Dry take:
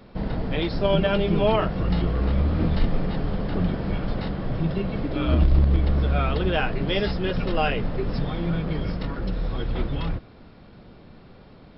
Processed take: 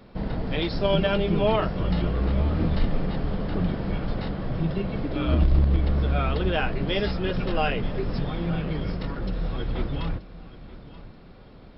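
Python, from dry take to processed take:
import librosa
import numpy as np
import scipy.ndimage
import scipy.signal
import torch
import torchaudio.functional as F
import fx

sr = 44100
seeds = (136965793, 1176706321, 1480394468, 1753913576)

y = fx.high_shelf(x, sr, hz=4700.0, db=7.5, at=(0.47, 1.14))
y = fx.echo_feedback(y, sr, ms=931, feedback_pct=34, wet_db=-17.0)
y = y * librosa.db_to_amplitude(-1.5)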